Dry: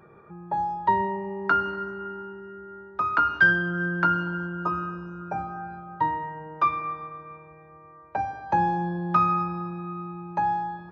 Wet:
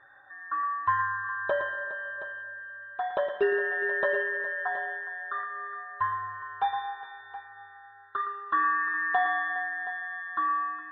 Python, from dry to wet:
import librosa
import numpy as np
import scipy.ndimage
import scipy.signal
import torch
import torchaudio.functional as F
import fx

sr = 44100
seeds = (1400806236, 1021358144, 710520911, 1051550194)

y = fx.band_invert(x, sr, width_hz=2000)
y = scipy.signal.sosfilt(scipy.signal.butter(4, 3300.0, 'lowpass', fs=sr, output='sos'), y)
y = fx.peak_eq(y, sr, hz=1600.0, db=5.0, octaves=2.2)
y = fx.echo_multitap(y, sr, ms=(114, 413, 722), db=(-11.0, -16.0, -14.5))
y = y * 10.0 ** (-8.0 / 20.0)